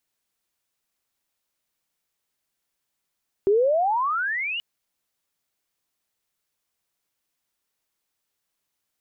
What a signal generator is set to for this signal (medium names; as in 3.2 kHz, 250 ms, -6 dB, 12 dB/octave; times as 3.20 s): gliding synth tone sine, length 1.13 s, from 382 Hz, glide +35.5 st, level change -11 dB, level -15 dB